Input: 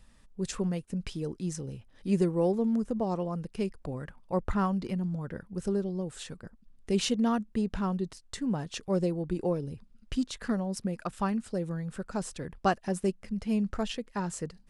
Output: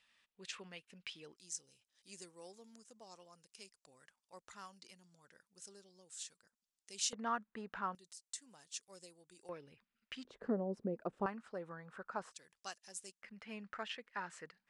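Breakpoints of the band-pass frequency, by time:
band-pass, Q 1.6
2700 Hz
from 1.36 s 6800 Hz
from 7.13 s 1400 Hz
from 7.95 s 7800 Hz
from 9.49 s 2100 Hz
from 10.25 s 430 Hz
from 11.26 s 1200 Hz
from 12.32 s 6900 Hz
from 13.22 s 1800 Hz

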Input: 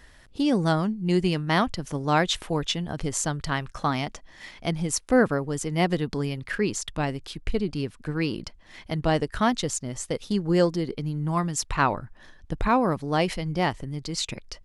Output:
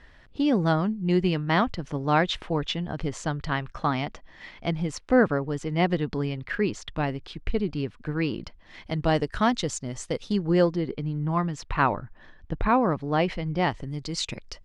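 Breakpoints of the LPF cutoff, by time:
8.35 s 3600 Hz
9.14 s 6600 Hz
10.19 s 6600 Hz
10.75 s 3000 Hz
13.48 s 3000 Hz
13.92 s 7200 Hz

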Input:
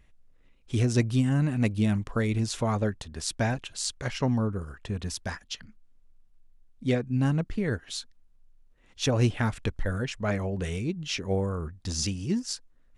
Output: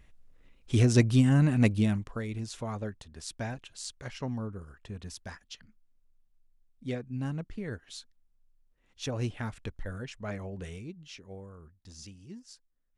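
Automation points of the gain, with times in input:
1.69 s +2 dB
2.21 s -9 dB
10.63 s -9 dB
11.32 s -18 dB

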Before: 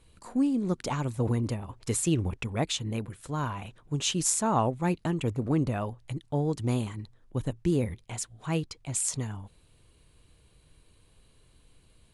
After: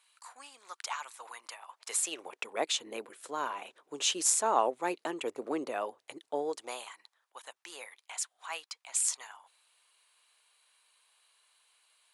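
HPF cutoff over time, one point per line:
HPF 24 dB/oct
1.48 s 960 Hz
2.67 s 380 Hz
6.41 s 380 Hz
6.94 s 830 Hz

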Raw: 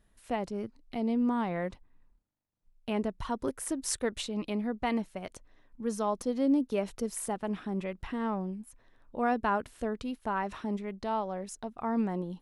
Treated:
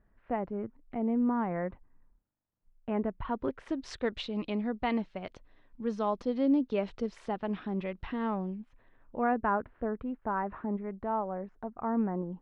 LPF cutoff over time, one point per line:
LPF 24 dB/oct
2.93 s 1900 Hz
3.84 s 4200 Hz
8.41 s 4200 Hz
9.61 s 1700 Hz

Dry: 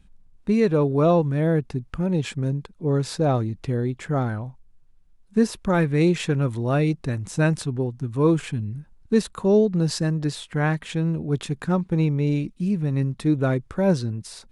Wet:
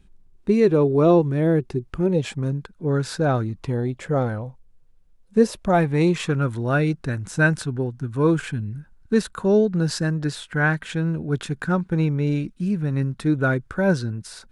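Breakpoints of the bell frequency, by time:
bell +11.5 dB 0.3 oct
2.07 s 370 Hz
2.54 s 1500 Hz
3.4 s 1500 Hz
4.09 s 500 Hz
5.41 s 500 Hz
6.48 s 1500 Hz

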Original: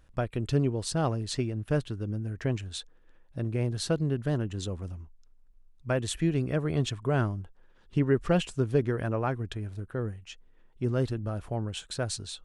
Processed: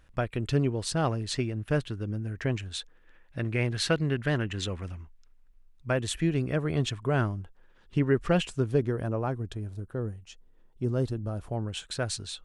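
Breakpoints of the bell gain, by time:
bell 2100 Hz 1.6 oct
2.77 s +5 dB
3.43 s +14 dB
4.77 s +14 dB
5.98 s +3 dB
8.53 s +3 dB
9.01 s -7 dB
11.29 s -7 dB
11.88 s +4 dB

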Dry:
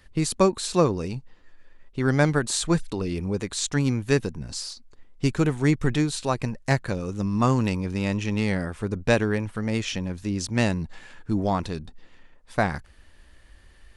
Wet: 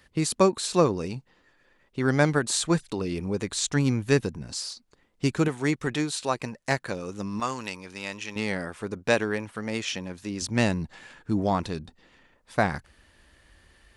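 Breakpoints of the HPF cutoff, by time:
HPF 6 dB/oct
140 Hz
from 3.41 s 49 Hz
from 4.38 s 140 Hz
from 5.48 s 360 Hz
from 7.4 s 1300 Hz
from 8.36 s 360 Hz
from 10.42 s 89 Hz

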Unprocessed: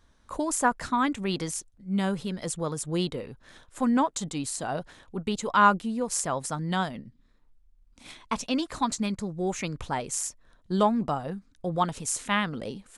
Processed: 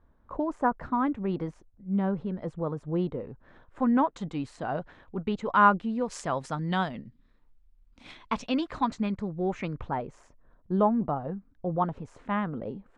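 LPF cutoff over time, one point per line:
3.24 s 1100 Hz
4.14 s 2100 Hz
5.73 s 2100 Hz
6.14 s 3600 Hz
8.36 s 3600 Hz
9.09 s 2100 Hz
9.62 s 2100 Hz
10.07 s 1100 Hz

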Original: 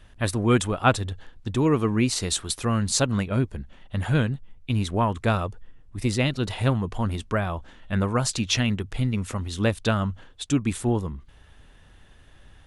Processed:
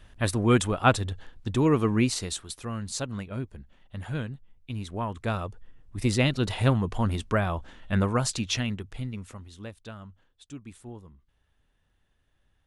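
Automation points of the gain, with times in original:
2.02 s -1 dB
2.46 s -10 dB
4.83 s -10 dB
6.13 s 0 dB
7.97 s 0 dB
9.18 s -10.5 dB
9.74 s -19 dB

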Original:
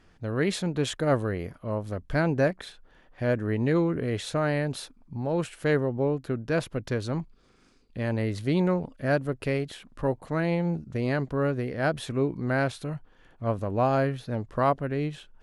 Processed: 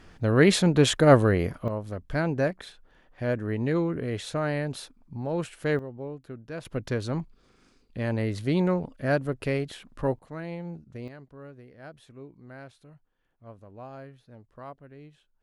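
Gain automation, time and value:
+7.5 dB
from 1.68 s -2 dB
from 5.79 s -11 dB
from 6.65 s 0 dB
from 10.19 s -10 dB
from 11.08 s -19 dB

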